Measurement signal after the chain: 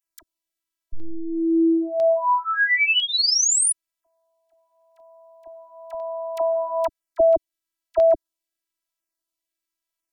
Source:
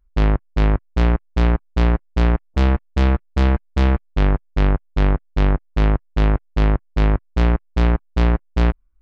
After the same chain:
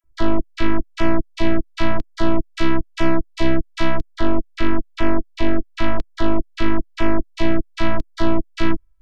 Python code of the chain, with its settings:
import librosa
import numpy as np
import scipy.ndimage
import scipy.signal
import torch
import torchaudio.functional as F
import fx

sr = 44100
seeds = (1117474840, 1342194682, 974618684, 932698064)

y = fx.dispersion(x, sr, late='lows', ms=44.0, hz=1000.0)
y = fx.robotise(y, sr, hz=328.0)
y = fx.filter_lfo_notch(y, sr, shape='saw_down', hz=1.0, low_hz=280.0, high_hz=4400.0, q=1.9)
y = F.gain(torch.from_numpy(y), 5.5).numpy()